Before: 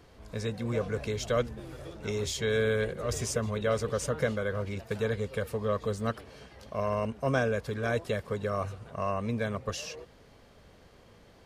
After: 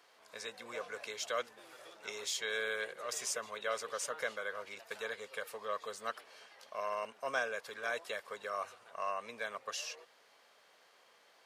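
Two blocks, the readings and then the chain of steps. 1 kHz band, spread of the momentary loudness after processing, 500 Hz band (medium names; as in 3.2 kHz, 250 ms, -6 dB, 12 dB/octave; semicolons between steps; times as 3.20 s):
-3.5 dB, 10 LU, -11.0 dB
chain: high-pass 830 Hz 12 dB/octave; trim -2 dB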